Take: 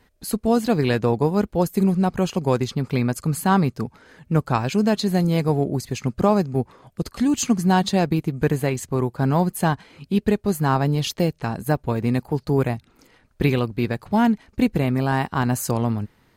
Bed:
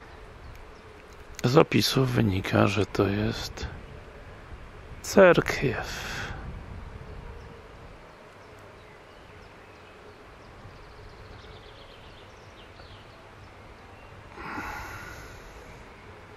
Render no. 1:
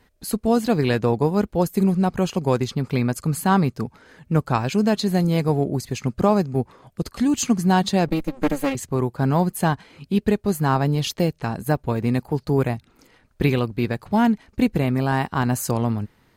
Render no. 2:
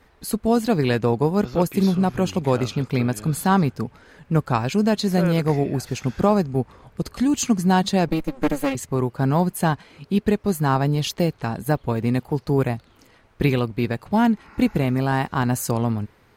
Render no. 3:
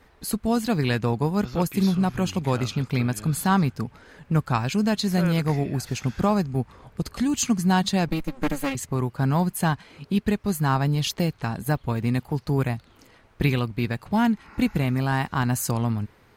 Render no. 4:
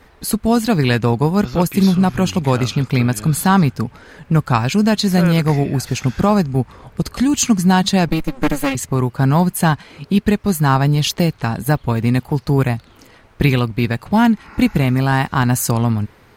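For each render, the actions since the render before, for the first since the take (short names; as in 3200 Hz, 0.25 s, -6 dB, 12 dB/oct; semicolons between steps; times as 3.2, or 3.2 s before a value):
8.08–8.75 minimum comb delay 3.7 ms
add bed -12 dB
dynamic EQ 460 Hz, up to -7 dB, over -33 dBFS, Q 0.8
gain +8 dB; limiter -2 dBFS, peak gain reduction 2 dB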